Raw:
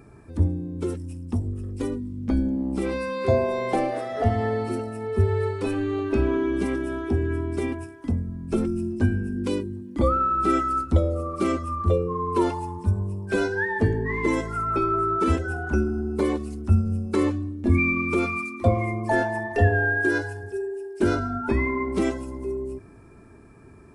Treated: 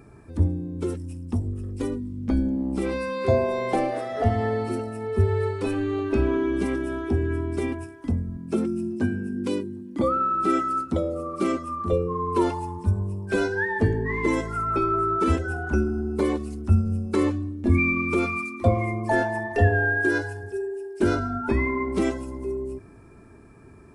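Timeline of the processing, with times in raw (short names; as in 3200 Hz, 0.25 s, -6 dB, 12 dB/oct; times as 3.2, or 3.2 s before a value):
8.37–11.93 Chebyshev high-pass 160 Hz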